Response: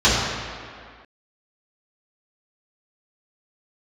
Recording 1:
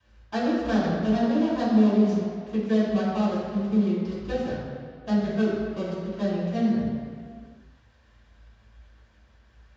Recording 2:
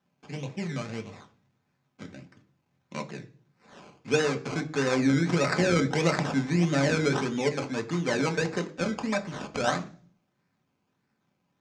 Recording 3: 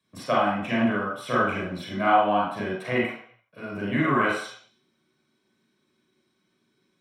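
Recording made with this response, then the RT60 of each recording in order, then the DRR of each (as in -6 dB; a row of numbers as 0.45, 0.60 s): 1; 2.1, 0.45, 0.60 s; -11.0, 4.5, -5.5 dB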